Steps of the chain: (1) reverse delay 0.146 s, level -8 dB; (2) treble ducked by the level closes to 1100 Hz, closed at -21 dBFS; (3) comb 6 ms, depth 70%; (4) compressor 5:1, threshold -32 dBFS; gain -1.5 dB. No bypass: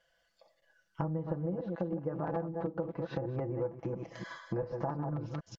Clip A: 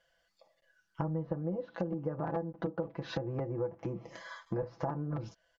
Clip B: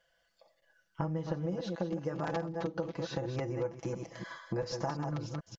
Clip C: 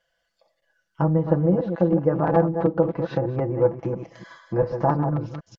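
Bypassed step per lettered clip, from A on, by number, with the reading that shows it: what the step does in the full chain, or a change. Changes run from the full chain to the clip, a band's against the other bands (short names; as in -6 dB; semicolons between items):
1, 4 kHz band +5.5 dB; 2, 4 kHz band +10.0 dB; 4, mean gain reduction 11.5 dB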